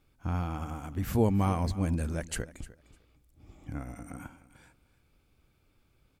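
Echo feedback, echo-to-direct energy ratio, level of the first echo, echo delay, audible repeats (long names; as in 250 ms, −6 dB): 18%, −18.0 dB, −18.0 dB, 302 ms, 2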